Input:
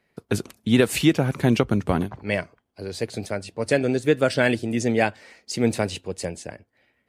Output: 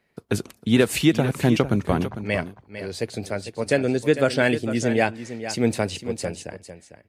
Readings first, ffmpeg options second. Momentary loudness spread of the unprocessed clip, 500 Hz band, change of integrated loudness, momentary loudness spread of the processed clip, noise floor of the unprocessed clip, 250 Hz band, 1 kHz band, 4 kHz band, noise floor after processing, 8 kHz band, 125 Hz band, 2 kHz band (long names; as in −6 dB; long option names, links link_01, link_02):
13 LU, +0.5 dB, 0.0 dB, 13 LU, −71 dBFS, +0.5 dB, +0.5 dB, +0.5 dB, −61 dBFS, +0.5 dB, +0.5 dB, +0.5 dB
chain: -af "aecho=1:1:451:0.266"